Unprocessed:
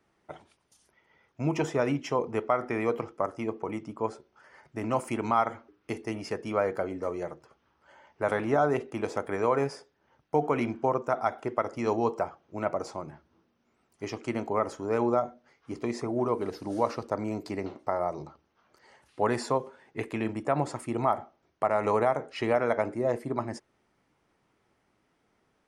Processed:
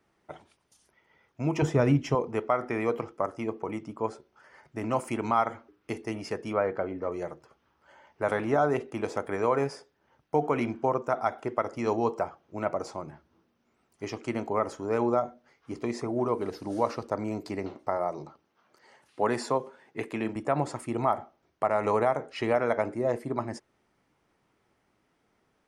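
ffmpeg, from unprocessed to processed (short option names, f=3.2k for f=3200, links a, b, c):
-filter_complex "[0:a]asettb=1/sr,asplit=3[a][b][c];[a]atrim=end=1.624[d];[b]atrim=start=1.62:end=2.15,asetpts=PTS-STARTPTS,afade=t=in:d=0.004:c=qsin,afade=t=out:st=0.526:d=0.004:c=qsin,equalizer=f=79:t=o:w=2.6:g=14.5[e];[c]atrim=start=2.146[f];[d][e]acrossfade=d=0.004:c1=hsin:c2=qsin[g];[g][f]acrossfade=d=0.004:c1=qsin:c2=hsin,asettb=1/sr,asplit=3[h][i][j];[h]atrim=end=6.534[k];[i]atrim=start=6.53:end=7.12,asetpts=PTS-STARTPTS,afade=t=in:d=0.004:c=qsin,afade=t=out:st=0.586:d=0.004:c=qsin,lowpass=2.9k[l];[j]atrim=start=7.116[m];[k][l]acrossfade=d=0.004:c1=hsin:c2=qsin[n];[n][m]acrossfade=d=0.004:c1=qsin:c2=hsin,asettb=1/sr,asplit=3[o][p][q];[o]atrim=end=17.974[r];[p]atrim=start=17.97:end=20.36,asetpts=PTS-STARTPTS,afade=t=in:d=0.004:c=qsin,afade=t=out:st=2.386:d=0.004:c=qsin,highpass=130[s];[q]atrim=start=20.356[t];[r][s]acrossfade=d=0.004:c1=hsin:c2=qsin[u];[u][t]acrossfade=d=0.004:c1=qsin:c2=hsin"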